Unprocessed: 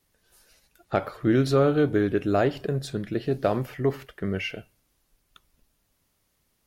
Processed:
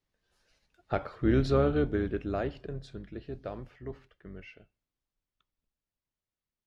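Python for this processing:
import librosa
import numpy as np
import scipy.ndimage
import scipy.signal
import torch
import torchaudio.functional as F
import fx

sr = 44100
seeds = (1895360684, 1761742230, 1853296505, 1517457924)

y = fx.octave_divider(x, sr, octaves=2, level_db=-4.0)
y = fx.doppler_pass(y, sr, speed_mps=6, closest_m=3.8, pass_at_s=1.36)
y = scipy.signal.sosfilt(scipy.signal.butter(2, 5100.0, 'lowpass', fs=sr, output='sos'), y)
y = y * librosa.db_to_amplitude(-4.5)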